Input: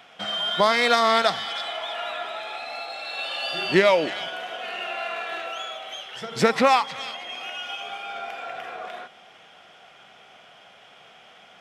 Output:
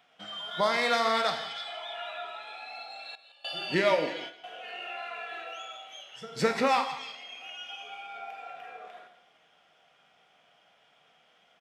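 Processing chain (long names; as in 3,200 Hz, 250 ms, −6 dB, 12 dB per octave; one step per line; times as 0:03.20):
noise reduction from a noise print of the clip's start 7 dB
reverb whose tail is shaped and stops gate 230 ms falling, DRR 5 dB
0:03.15–0:04.44: noise gate with hold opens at −19 dBFS
on a send: single-tap delay 166 ms −15 dB
on the sum: level −8 dB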